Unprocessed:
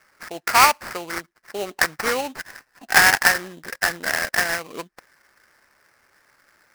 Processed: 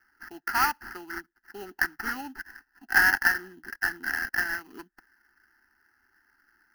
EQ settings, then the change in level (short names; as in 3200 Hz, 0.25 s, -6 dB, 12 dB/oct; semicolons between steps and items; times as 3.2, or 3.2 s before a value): high shelf 8200 Hz -4.5 dB; fixed phaser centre 740 Hz, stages 8; fixed phaser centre 2300 Hz, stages 6; -2.0 dB